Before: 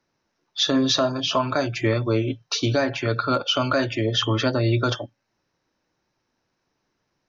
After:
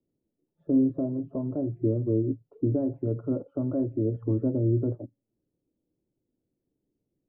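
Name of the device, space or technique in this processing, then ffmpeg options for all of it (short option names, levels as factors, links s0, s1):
under water: -filter_complex "[0:a]asettb=1/sr,asplit=3[s0][s1][s2];[s0]atrim=end=2.664[s3];[s1]atrim=start=2.66:end=4.53,asetpts=PTS-STARTPTS,afade=t=in:d=0.004:c=qsin,afade=t=out:st=1.866:d=0.004:c=qsin,equalizer=f=1300:t=o:w=0.91:g=5[s4];[s2]atrim=start=4.526[s5];[s3][s4]acrossfade=d=0.004:c1=hsin:c2=qsin[s6];[s6][s5]acrossfade=d=0.004:c1=qsin:c2=hsin,lowpass=f=470:w=0.5412,lowpass=f=470:w=1.3066,equalizer=f=290:t=o:w=0.44:g=4,volume=0.668"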